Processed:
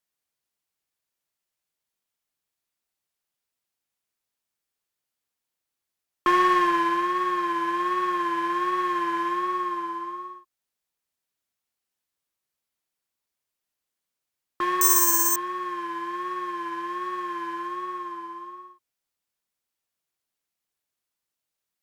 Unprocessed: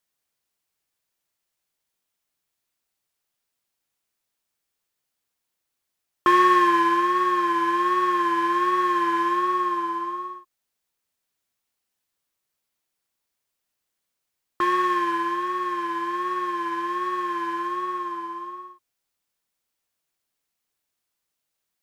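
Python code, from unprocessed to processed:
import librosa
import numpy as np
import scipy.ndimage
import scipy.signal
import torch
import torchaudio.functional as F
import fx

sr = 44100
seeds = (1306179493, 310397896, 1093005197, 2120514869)

y = fx.cheby_harmonics(x, sr, harmonics=(2, 7), levels_db=(-17, -33), full_scale_db=-7.0)
y = fx.resample_bad(y, sr, factor=6, down='filtered', up='zero_stuff', at=(14.81, 15.36))
y = y * 10.0 ** (-3.0 / 20.0)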